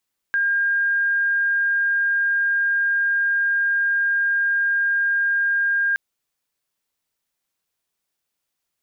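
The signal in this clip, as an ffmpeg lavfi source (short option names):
-f lavfi -i "sine=f=1610:d=5.62:r=44100,volume=1.06dB"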